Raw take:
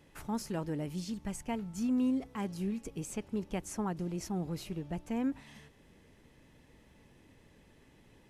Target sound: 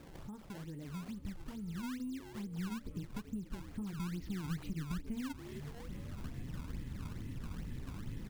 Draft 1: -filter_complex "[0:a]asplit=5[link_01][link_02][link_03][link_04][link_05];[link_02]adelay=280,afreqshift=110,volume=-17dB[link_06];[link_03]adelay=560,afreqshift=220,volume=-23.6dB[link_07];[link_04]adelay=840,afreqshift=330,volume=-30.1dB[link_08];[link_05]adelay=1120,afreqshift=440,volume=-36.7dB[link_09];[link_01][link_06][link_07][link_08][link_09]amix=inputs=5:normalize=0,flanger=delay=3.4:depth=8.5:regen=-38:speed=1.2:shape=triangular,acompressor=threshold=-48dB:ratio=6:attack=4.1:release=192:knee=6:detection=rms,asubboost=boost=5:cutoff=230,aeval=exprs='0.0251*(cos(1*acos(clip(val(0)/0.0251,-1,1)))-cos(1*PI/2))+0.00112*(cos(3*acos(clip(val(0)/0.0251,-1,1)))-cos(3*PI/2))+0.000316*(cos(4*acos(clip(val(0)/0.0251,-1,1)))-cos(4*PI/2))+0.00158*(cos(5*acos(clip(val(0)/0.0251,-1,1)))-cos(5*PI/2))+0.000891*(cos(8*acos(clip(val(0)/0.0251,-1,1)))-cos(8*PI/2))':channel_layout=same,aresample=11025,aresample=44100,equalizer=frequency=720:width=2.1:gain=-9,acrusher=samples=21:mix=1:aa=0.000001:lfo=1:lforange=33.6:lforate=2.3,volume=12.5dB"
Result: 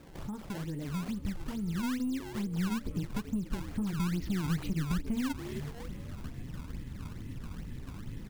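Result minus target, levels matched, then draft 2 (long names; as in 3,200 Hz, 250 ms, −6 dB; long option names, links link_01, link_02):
downward compressor: peak gain reduction −9 dB
-filter_complex "[0:a]asplit=5[link_01][link_02][link_03][link_04][link_05];[link_02]adelay=280,afreqshift=110,volume=-17dB[link_06];[link_03]adelay=560,afreqshift=220,volume=-23.6dB[link_07];[link_04]adelay=840,afreqshift=330,volume=-30.1dB[link_08];[link_05]adelay=1120,afreqshift=440,volume=-36.7dB[link_09];[link_01][link_06][link_07][link_08][link_09]amix=inputs=5:normalize=0,flanger=delay=3.4:depth=8.5:regen=-38:speed=1.2:shape=triangular,acompressor=threshold=-58.5dB:ratio=6:attack=4.1:release=192:knee=6:detection=rms,asubboost=boost=5:cutoff=230,aeval=exprs='0.0251*(cos(1*acos(clip(val(0)/0.0251,-1,1)))-cos(1*PI/2))+0.00112*(cos(3*acos(clip(val(0)/0.0251,-1,1)))-cos(3*PI/2))+0.000316*(cos(4*acos(clip(val(0)/0.0251,-1,1)))-cos(4*PI/2))+0.00158*(cos(5*acos(clip(val(0)/0.0251,-1,1)))-cos(5*PI/2))+0.000891*(cos(8*acos(clip(val(0)/0.0251,-1,1)))-cos(8*PI/2))':channel_layout=same,aresample=11025,aresample=44100,equalizer=frequency=720:width=2.1:gain=-9,acrusher=samples=21:mix=1:aa=0.000001:lfo=1:lforange=33.6:lforate=2.3,volume=12.5dB"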